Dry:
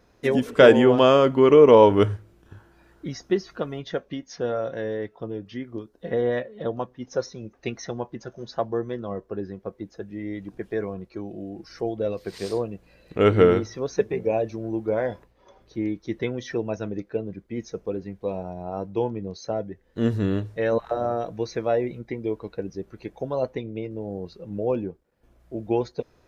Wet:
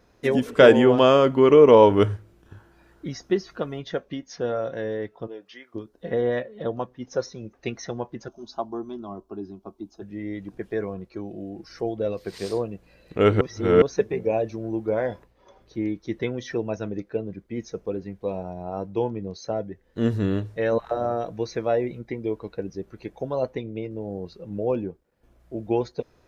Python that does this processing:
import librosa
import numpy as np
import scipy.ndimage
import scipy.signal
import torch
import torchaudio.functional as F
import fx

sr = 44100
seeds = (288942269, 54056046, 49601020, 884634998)

y = fx.highpass(x, sr, hz=fx.line((5.26, 440.0), (5.74, 1000.0)), slope=12, at=(5.26, 5.74), fade=0.02)
y = fx.fixed_phaser(y, sr, hz=500.0, stages=6, at=(8.28, 10.02))
y = fx.edit(y, sr, fx.reverse_span(start_s=13.41, length_s=0.41), tone=tone)